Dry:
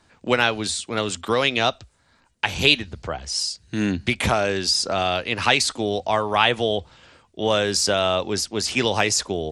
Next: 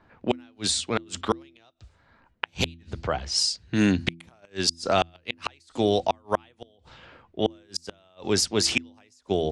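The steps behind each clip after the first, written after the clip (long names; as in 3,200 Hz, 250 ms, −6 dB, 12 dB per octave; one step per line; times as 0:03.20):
low-pass that shuts in the quiet parts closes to 1,800 Hz, open at −19 dBFS
gate with flip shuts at −10 dBFS, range −40 dB
hum removal 83.72 Hz, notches 4
level +2 dB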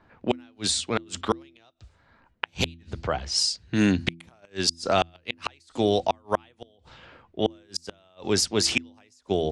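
no processing that can be heard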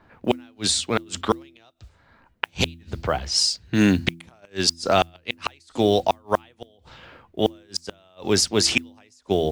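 noise that follows the level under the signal 35 dB
level +3.5 dB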